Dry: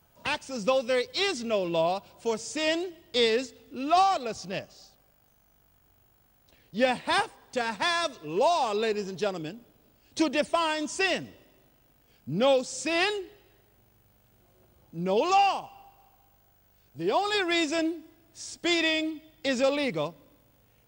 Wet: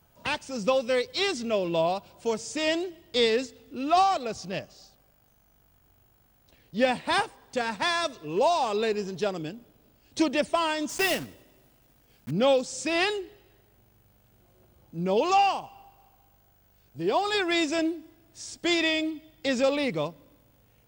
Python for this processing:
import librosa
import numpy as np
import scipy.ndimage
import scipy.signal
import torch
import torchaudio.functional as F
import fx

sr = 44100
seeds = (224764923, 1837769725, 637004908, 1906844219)

y = fx.block_float(x, sr, bits=3, at=(10.89, 12.31))
y = fx.low_shelf(y, sr, hz=340.0, db=2.5)